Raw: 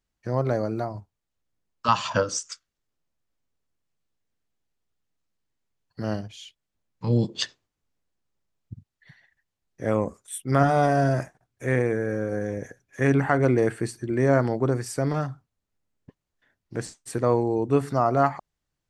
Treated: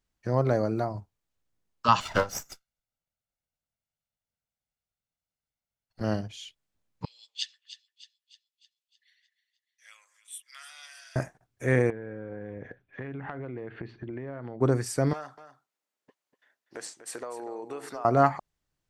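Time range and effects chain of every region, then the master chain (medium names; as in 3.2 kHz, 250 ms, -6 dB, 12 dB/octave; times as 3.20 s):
2.00–6.01 s: comb filter that takes the minimum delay 1.4 ms + upward expansion, over -33 dBFS
7.05–11.16 s: ladder high-pass 2.3 kHz, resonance 35% + two-band feedback delay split 1.6 kHz, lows 115 ms, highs 306 ms, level -13 dB
11.90–14.61 s: steep low-pass 3.6 kHz + compression 16:1, threshold -33 dBFS
15.13–18.05 s: high-pass 530 Hz + compression 10:1, threshold -33 dBFS + delay 244 ms -11.5 dB
whole clip: none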